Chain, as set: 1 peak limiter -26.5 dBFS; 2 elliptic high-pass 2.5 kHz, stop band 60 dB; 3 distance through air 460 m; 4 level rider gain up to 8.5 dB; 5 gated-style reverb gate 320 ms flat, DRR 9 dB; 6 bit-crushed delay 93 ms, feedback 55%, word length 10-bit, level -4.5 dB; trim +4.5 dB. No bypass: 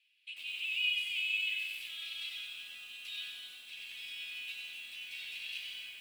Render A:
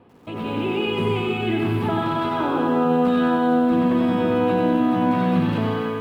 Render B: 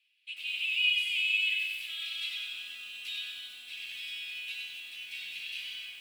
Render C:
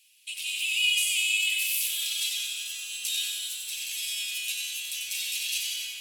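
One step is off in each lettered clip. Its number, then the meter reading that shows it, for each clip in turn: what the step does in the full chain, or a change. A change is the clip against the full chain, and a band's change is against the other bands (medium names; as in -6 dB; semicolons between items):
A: 2, crest factor change -7.5 dB; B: 1, mean gain reduction 3.5 dB; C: 3, crest factor change -2.0 dB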